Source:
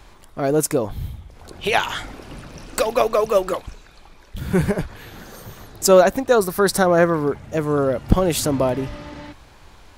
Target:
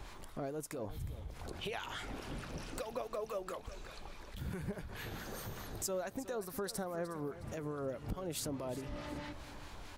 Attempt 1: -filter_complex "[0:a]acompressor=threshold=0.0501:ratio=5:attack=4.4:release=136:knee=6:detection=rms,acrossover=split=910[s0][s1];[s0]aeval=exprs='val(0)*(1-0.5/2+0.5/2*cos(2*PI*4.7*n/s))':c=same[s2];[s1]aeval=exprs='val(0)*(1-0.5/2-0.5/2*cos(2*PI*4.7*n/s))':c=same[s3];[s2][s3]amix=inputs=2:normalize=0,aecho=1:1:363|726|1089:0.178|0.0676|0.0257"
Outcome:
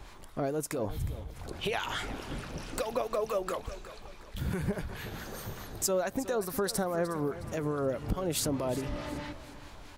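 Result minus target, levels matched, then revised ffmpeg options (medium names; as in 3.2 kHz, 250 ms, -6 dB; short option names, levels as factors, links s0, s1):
compression: peak gain reduction -9 dB
-filter_complex "[0:a]acompressor=threshold=0.0141:ratio=5:attack=4.4:release=136:knee=6:detection=rms,acrossover=split=910[s0][s1];[s0]aeval=exprs='val(0)*(1-0.5/2+0.5/2*cos(2*PI*4.7*n/s))':c=same[s2];[s1]aeval=exprs='val(0)*(1-0.5/2-0.5/2*cos(2*PI*4.7*n/s))':c=same[s3];[s2][s3]amix=inputs=2:normalize=0,aecho=1:1:363|726|1089:0.178|0.0676|0.0257"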